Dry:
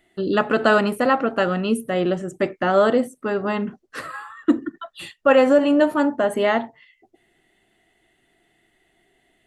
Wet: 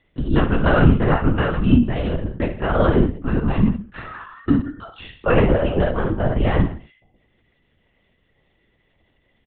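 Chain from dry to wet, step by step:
low shelf with overshoot 280 Hz +6 dB, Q 3
on a send: reverse bouncing-ball delay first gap 30 ms, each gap 1.15×, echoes 5
on the sum: linear-prediction vocoder at 8 kHz whisper
level −3.5 dB

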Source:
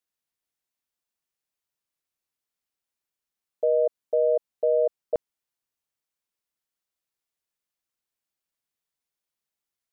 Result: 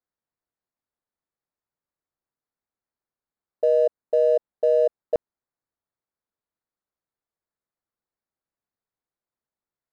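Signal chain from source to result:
adaptive Wiener filter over 15 samples
level +3 dB

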